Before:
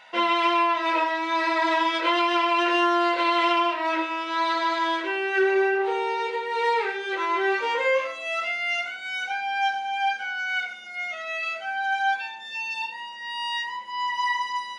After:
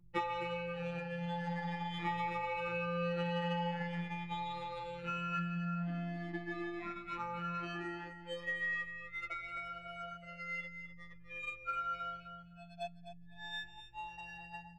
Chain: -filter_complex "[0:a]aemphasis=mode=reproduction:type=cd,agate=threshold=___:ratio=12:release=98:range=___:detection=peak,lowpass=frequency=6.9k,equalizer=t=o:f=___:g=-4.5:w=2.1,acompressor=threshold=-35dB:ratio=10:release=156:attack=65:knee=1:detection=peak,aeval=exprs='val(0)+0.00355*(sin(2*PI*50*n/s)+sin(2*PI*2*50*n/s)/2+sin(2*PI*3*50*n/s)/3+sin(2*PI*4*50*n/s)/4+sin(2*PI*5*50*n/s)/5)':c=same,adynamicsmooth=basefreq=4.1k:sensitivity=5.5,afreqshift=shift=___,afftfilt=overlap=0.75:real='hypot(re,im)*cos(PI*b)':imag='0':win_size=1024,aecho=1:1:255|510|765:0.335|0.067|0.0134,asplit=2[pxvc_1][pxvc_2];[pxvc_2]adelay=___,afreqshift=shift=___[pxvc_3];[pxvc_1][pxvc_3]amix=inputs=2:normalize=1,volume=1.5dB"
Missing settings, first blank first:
-30dB, -48dB, 94, -170, 6.3, 0.44